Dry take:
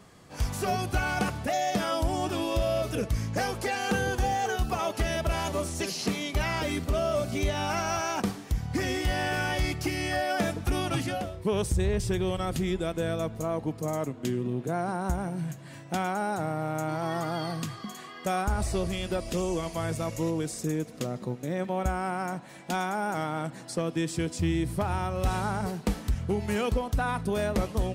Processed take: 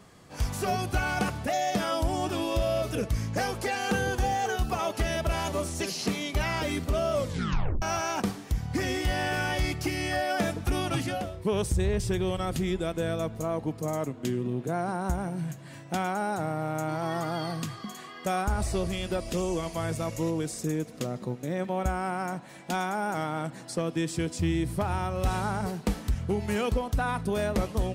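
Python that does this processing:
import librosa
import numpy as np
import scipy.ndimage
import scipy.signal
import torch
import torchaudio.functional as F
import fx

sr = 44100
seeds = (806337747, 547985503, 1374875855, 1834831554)

y = fx.edit(x, sr, fx.tape_stop(start_s=7.17, length_s=0.65), tone=tone)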